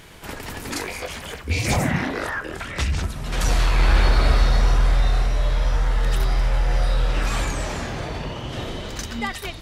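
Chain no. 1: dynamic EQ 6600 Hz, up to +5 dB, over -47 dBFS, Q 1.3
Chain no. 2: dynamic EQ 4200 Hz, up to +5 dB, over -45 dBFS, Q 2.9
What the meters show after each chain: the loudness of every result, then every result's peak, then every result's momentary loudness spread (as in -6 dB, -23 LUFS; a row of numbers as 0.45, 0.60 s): -23.5, -23.5 LUFS; -7.5, -7.5 dBFS; 11, 11 LU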